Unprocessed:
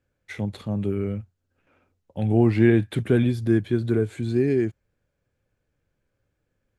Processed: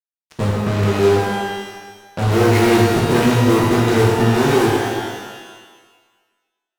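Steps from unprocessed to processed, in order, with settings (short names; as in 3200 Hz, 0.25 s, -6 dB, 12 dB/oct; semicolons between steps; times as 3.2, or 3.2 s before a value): 0.86–2.27 power-law curve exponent 1.4; LFO low-pass sine 1.6 Hz 440–2800 Hz; fuzz box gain 39 dB, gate -35 dBFS; tape echo 0.176 s, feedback 47%, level -7 dB, low-pass 2400 Hz; shimmer reverb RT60 1.3 s, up +12 st, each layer -8 dB, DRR -2 dB; gain -4.5 dB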